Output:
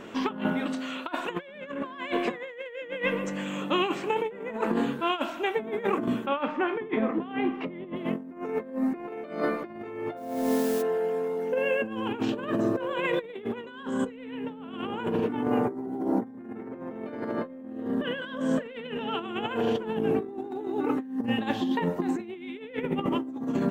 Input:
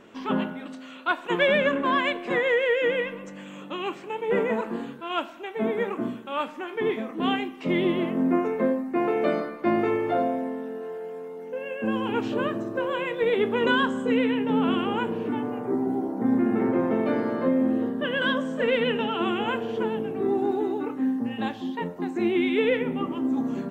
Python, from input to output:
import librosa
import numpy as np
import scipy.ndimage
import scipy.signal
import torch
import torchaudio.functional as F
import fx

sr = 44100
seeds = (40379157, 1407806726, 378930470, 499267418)

y = fx.lowpass(x, sr, hz=fx.line((6.25, 2700.0), (7.95, 1800.0)), slope=12, at=(6.25, 7.95), fade=0.02)
y = fx.quant_dither(y, sr, seeds[0], bits=8, dither='triangular', at=(10.16, 10.81), fade=0.02)
y = fx.over_compress(y, sr, threshold_db=-31.0, ratio=-0.5)
y = y * 10.0 ** (2.0 / 20.0)